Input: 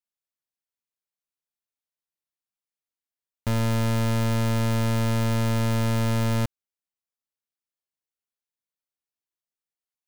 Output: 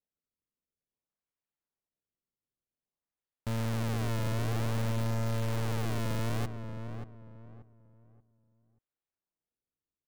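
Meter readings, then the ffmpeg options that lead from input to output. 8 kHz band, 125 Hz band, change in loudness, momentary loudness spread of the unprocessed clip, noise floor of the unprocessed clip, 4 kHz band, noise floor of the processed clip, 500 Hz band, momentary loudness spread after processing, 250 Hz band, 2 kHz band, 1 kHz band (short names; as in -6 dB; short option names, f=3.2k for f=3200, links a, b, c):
-8.5 dB, -8.0 dB, -9.0 dB, 4 LU, under -85 dBFS, -8.5 dB, under -85 dBFS, -7.5 dB, 13 LU, -10.0 dB, -8.0 dB, -8.0 dB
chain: -filter_complex "[0:a]lowpass=2.8k,acrusher=samples=32:mix=1:aa=0.000001:lfo=1:lforange=51.2:lforate=0.53,alimiter=level_in=6.5dB:limit=-24dB:level=0:latency=1,volume=-6.5dB,asplit=2[a][b];[b]adelay=582,lowpass=f=1.4k:p=1,volume=-7.5dB,asplit=2[c][d];[d]adelay=582,lowpass=f=1.4k:p=1,volume=0.3,asplit=2[e][f];[f]adelay=582,lowpass=f=1.4k:p=1,volume=0.3,asplit=2[g][h];[h]adelay=582,lowpass=f=1.4k:p=1,volume=0.3[i];[a][c][e][g][i]amix=inputs=5:normalize=0"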